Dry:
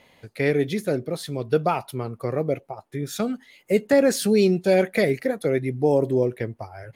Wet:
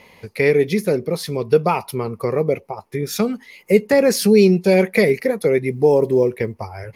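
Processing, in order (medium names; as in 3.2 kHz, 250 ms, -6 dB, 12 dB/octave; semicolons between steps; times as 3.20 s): rippled EQ curve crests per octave 0.84, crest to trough 7 dB; in parallel at -3 dB: compression, threshold -28 dBFS, peak gain reduction 16 dB; 5.68–6.60 s: on the sum: short-mantissa float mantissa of 6-bit; trim +2.5 dB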